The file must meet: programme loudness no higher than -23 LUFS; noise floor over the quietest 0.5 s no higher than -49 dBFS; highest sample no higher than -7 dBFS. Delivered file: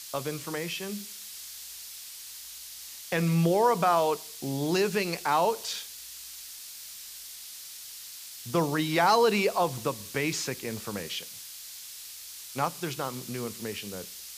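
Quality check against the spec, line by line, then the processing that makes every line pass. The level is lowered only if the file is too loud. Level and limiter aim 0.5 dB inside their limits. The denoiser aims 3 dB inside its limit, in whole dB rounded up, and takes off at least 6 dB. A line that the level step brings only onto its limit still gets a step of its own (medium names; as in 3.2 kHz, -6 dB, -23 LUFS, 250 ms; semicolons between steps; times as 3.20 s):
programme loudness -29.0 LUFS: pass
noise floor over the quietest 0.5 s -44 dBFS: fail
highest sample -11.5 dBFS: pass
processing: noise reduction 8 dB, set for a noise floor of -44 dBFS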